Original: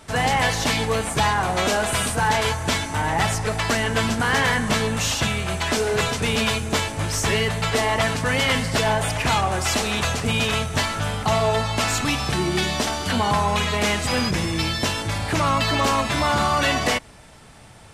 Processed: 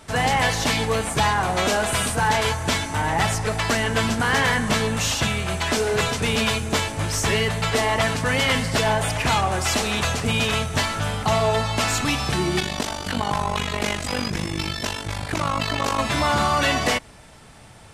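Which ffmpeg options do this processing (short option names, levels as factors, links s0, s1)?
-filter_complex "[0:a]asettb=1/sr,asplit=3[s0][s1][s2];[s0]atrim=end=12.604[s3];[s1]atrim=start=12.6:end=15.99,asetpts=PTS-STARTPTS,afade=t=in:d=0.004:c=qsin,afade=t=out:st=3.386:d=0.004:c=qsin,tremolo=f=49:d=0.824[s4];[s2]atrim=start=15.986[s5];[s3][s4]acrossfade=d=0.004:c1=hsin:c2=qsin[s6];[s6][s5]acrossfade=d=0.004:c1=qsin:c2=hsin"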